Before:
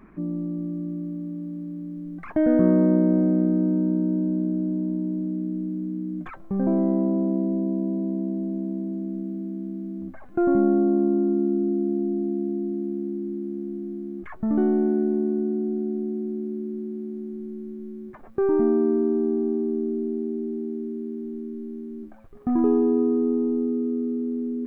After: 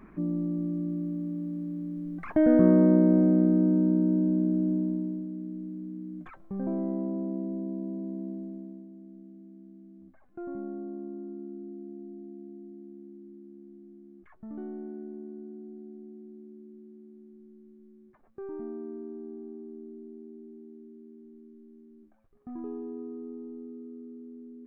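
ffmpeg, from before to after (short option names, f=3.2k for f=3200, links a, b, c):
-af "volume=-1dB,afade=t=out:st=4.73:d=0.54:silence=0.398107,afade=t=out:st=8.3:d=0.58:silence=0.354813"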